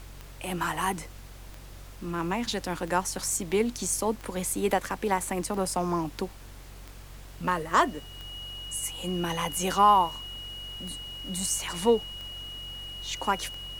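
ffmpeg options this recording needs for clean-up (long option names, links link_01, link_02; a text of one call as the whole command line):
ffmpeg -i in.wav -af "adeclick=threshold=4,bandreject=frequency=46.3:width_type=h:width=4,bandreject=frequency=92.6:width_type=h:width=4,bandreject=frequency=138.9:width_type=h:width=4,bandreject=frequency=2900:width=30,afftdn=noise_reduction=29:noise_floor=-45" out.wav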